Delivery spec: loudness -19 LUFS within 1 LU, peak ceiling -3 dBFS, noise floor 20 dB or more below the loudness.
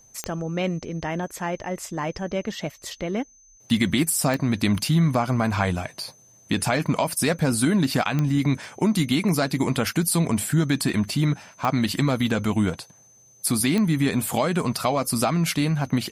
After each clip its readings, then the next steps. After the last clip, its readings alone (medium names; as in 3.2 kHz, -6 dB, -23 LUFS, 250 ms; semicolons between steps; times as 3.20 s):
clicks found 5; steady tone 6.2 kHz; tone level -52 dBFS; loudness -23.5 LUFS; peak level -8.5 dBFS; loudness target -19.0 LUFS
-> de-click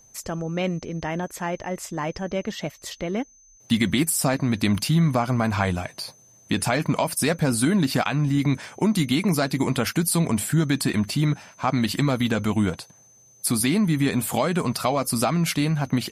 clicks found 0; steady tone 6.2 kHz; tone level -52 dBFS
-> band-stop 6.2 kHz, Q 30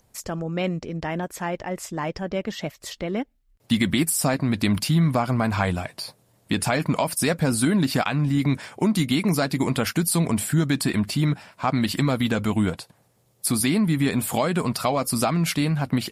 steady tone not found; loudness -23.5 LUFS; peak level -8.5 dBFS; loudness target -19.0 LUFS
-> trim +4.5 dB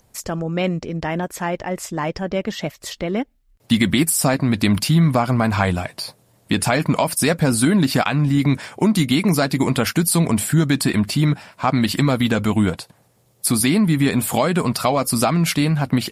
loudness -19.0 LUFS; peak level -4.0 dBFS; noise floor -59 dBFS